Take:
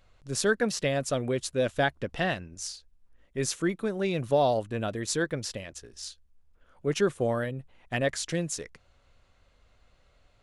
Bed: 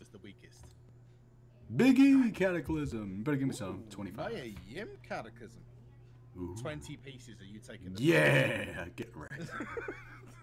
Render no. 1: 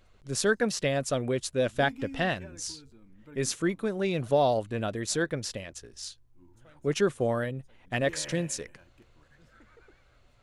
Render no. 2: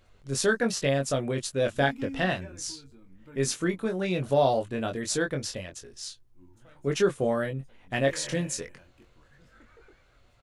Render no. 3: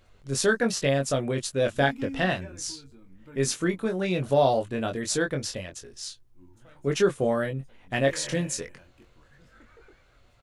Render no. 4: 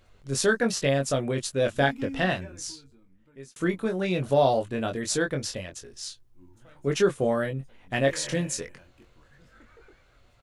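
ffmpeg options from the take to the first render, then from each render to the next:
-filter_complex "[1:a]volume=0.126[s0];[0:a][s0]amix=inputs=2:normalize=0"
-filter_complex "[0:a]asplit=2[s0][s1];[s1]adelay=22,volume=0.562[s2];[s0][s2]amix=inputs=2:normalize=0"
-af "volume=1.19"
-filter_complex "[0:a]asplit=2[s0][s1];[s0]atrim=end=3.56,asetpts=PTS-STARTPTS,afade=t=out:st=2.38:d=1.18[s2];[s1]atrim=start=3.56,asetpts=PTS-STARTPTS,afade=t=in:d=0.004:c=hsin[s3];[s2][s3]concat=n=2:v=0:a=1"

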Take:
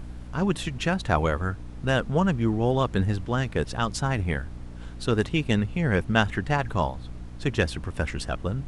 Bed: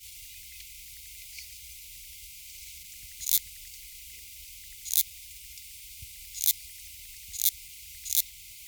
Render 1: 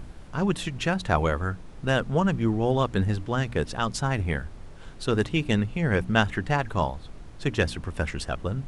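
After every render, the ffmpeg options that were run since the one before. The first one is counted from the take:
-af "bandreject=f=60:t=h:w=4,bandreject=f=120:t=h:w=4,bandreject=f=180:t=h:w=4,bandreject=f=240:t=h:w=4,bandreject=f=300:t=h:w=4"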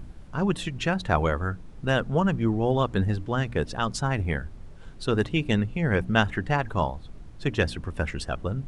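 -af "afftdn=nr=6:nf=-43"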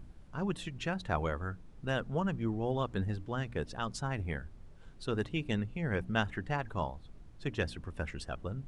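-af "volume=0.335"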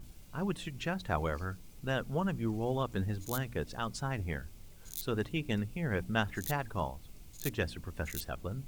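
-filter_complex "[1:a]volume=0.141[s0];[0:a][s0]amix=inputs=2:normalize=0"

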